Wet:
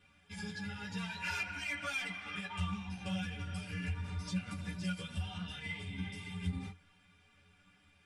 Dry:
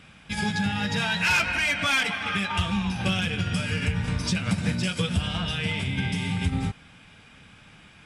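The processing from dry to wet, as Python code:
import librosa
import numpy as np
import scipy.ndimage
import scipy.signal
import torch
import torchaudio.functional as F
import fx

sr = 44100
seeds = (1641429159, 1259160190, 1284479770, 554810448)

y = fx.stiff_resonator(x, sr, f0_hz=86.0, decay_s=0.23, stiffness=0.03)
y = fx.ensemble(y, sr)
y = y * 10.0 ** (-4.5 / 20.0)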